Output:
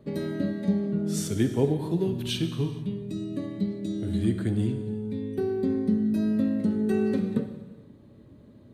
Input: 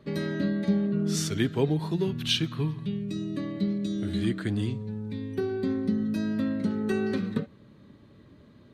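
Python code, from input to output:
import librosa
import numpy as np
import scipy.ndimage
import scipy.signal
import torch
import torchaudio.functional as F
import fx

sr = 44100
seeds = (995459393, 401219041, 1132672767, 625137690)

y = fx.band_shelf(x, sr, hz=2500.0, db=-8.0, octaves=2.9)
y = fx.rev_gated(y, sr, seeds[0], gate_ms=480, shape='falling', drr_db=7.5)
y = y * 10.0 ** (1.5 / 20.0)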